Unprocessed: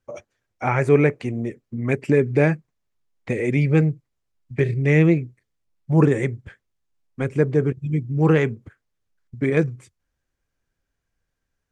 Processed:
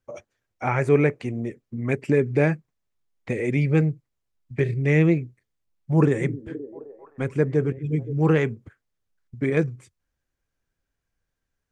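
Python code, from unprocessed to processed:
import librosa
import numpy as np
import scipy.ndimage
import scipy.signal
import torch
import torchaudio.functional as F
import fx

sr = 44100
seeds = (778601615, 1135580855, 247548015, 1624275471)

y = fx.echo_stepped(x, sr, ms=261, hz=220.0, octaves=0.7, feedback_pct=70, wet_db=-10, at=(5.94, 8.13))
y = y * librosa.db_to_amplitude(-2.5)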